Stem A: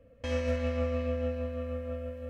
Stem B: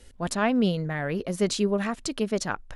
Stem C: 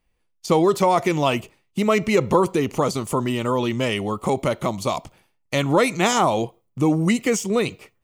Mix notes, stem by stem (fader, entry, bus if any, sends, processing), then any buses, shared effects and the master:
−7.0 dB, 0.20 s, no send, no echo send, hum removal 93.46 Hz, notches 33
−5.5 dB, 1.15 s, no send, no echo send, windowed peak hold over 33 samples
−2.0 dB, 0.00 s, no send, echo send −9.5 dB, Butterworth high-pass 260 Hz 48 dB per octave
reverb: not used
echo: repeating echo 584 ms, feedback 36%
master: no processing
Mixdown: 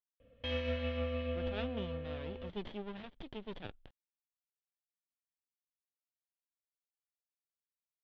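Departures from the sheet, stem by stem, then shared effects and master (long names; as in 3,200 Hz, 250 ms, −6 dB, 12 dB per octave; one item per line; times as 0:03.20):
stem A −7.0 dB → +5.0 dB
stem C: muted
master: extra transistor ladder low-pass 3,700 Hz, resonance 65%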